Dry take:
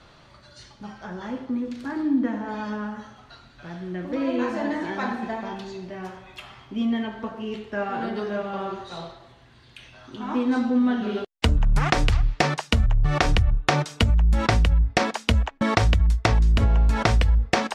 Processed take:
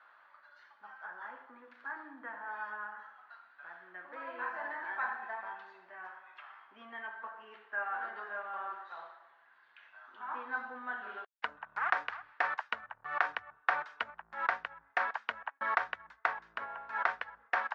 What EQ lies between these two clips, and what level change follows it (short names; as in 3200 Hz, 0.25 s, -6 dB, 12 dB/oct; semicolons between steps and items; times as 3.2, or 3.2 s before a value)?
ladder band-pass 1200 Hz, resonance 35%; air absorption 58 m; bell 1600 Hz +11 dB 0.61 oct; 0.0 dB